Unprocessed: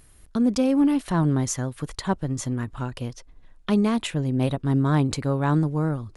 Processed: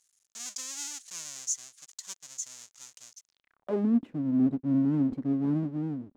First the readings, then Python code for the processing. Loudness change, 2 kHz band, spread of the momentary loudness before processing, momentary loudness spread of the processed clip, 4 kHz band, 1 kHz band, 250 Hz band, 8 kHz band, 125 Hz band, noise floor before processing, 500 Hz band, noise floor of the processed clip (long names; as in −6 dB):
−6.0 dB, below −15 dB, 11 LU, 19 LU, −8.0 dB, −18.5 dB, −5.5 dB, +1.0 dB, −13.0 dB, −52 dBFS, −10.5 dB, −80 dBFS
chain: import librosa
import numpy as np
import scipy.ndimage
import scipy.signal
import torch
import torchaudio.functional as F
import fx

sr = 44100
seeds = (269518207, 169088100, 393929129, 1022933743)

y = fx.halfwave_hold(x, sr)
y = fx.filter_sweep_bandpass(y, sr, from_hz=6700.0, to_hz=260.0, start_s=3.26, end_s=3.84, q=5.1)